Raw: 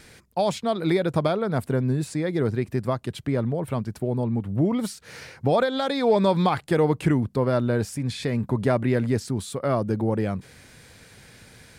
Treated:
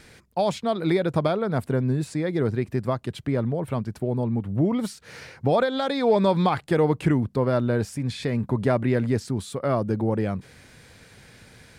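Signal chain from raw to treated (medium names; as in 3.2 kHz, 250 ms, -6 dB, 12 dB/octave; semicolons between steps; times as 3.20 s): treble shelf 6.3 kHz -5 dB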